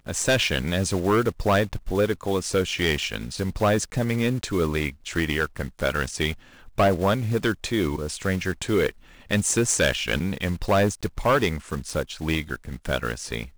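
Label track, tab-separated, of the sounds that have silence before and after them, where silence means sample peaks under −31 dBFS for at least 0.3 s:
6.780000	8.890000	sound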